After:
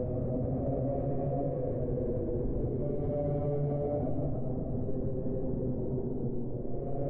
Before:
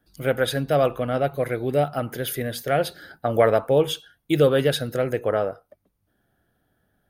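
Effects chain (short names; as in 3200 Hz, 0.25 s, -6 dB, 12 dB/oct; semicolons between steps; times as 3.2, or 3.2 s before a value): level-crossing sampler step -22 dBFS; Gaussian blur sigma 17 samples; in parallel at -10 dB: soft clip -30 dBFS, distortion -7 dB; on the sum: Paulstretch 4.3×, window 0.50 s, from 0.99; limiter -23.5 dBFS, peak gain reduction 8.5 dB; notches 60/120/180/240 Hz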